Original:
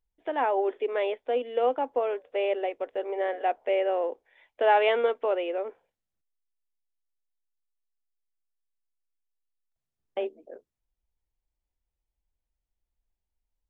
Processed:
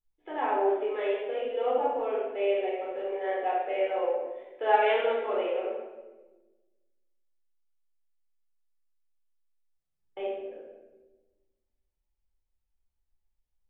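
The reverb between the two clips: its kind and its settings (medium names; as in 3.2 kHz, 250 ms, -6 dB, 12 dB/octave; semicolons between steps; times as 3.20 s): simulated room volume 690 m³, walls mixed, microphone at 4.1 m; trim -11 dB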